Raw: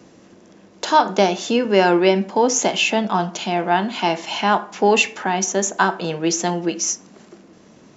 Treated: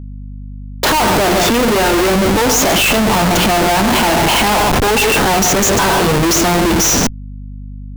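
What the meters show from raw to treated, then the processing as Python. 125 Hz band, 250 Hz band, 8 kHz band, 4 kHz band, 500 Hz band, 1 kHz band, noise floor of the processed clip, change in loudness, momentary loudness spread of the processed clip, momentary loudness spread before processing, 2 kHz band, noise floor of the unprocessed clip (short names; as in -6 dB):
+11.5 dB, +7.0 dB, n/a, +9.0 dB, +4.5 dB, +5.5 dB, -28 dBFS, +7.0 dB, 21 LU, 7 LU, +8.0 dB, -49 dBFS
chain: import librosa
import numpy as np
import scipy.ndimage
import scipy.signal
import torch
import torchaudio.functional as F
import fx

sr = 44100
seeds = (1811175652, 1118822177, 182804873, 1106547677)

y = fx.echo_multitap(x, sr, ms=(91, 134, 141), db=(-16.0, -19.0, -14.0))
y = fx.schmitt(y, sr, flips_db=-30.5)
y = fx.add_hum(y, sr, base_hz=50, snr_db=15)
y = F.gain(torch.from_numpy(y), 7.5).numpy()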